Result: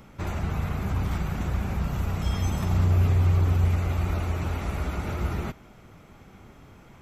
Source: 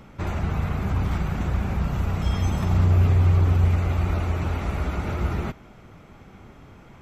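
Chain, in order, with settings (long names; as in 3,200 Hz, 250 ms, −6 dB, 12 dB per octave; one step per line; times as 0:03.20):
high-shelf EQ 6,500 Hz +8.5 dB
level −3 dB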